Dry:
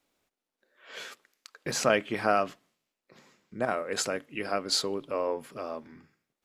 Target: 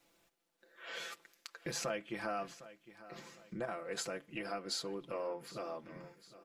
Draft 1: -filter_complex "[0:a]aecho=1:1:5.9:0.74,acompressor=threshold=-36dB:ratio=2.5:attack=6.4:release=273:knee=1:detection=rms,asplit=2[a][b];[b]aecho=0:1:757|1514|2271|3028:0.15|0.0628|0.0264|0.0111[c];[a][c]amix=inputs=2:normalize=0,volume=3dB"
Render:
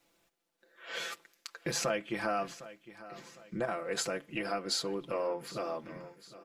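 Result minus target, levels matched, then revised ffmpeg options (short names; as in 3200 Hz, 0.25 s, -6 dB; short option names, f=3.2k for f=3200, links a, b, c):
compressor: peak gain reduction -6 dB
-filter_complex "[0:a]aecho=1:1:5.9:0.74,acompressor=threshold=-46dB:ratio=2.5:attack=6.4:release=273:knee=1:detection=rms,asplit=2[a][b];[b]aecho=0:1:757|1514|2271|3028:0.15|0.0628|0.0264|0.0111[c];[a][c]amix=inputs=2:normalize=0,volume=3dB"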